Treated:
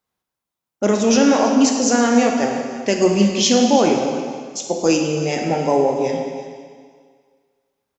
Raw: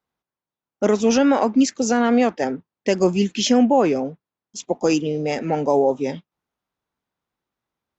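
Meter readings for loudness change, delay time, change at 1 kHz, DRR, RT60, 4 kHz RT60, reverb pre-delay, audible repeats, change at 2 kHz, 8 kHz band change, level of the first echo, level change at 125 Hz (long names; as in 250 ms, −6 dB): +2.5 dB, 330 ms, +2.5 dB, 1.5 dB, 1.8 s, 1.8 s, 17 ms, 1, +3.5 dB, can't be measured, −15.0 dB, +3.5 dB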